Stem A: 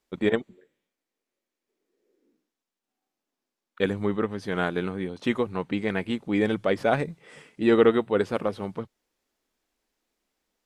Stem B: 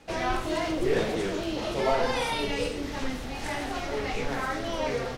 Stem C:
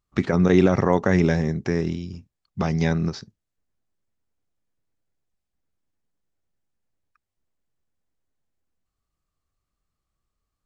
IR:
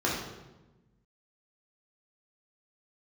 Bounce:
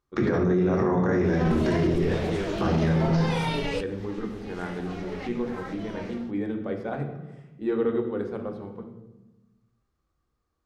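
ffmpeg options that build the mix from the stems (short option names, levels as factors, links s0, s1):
-filter_complex "[0:a]lowshelf=f=260:g=12,volume=0.168,asplit=3[s0][s1][s2];[s1]volume=0.266[s3];[1:a]dynaudnorm=f=100:g=5:m=3.98,adelay=1150,volume=0.473[s4];[2:a]acompressor=threshold=0.1:ratio=6,volume=0.891,asplit=2[s5][s6];[s6]volume=0.376[s7];[s2]apad=whole_len=278781[s8];[s4][s8]sidechaincompress=threshold=0.00501:ratio=12:attack=16:release=930[s9];[s9][s5]amix=inputs=2:normalize=0,acompressor=threshold=0.0398:ratio=2,volume=1[s10];[3:a]atrim=start_sample=2205[s11];[s3][s7]amix=inputs=2:normalize=0[s12];[s12][s11]afir=irnorm=-1:irlink=0[s13];[s0][s10][s13]amix=inputs=3:normalize=0,highshelf=f=5400:g=-8.5,alimiter=limit=0.168:level=0:latency=1:release=11"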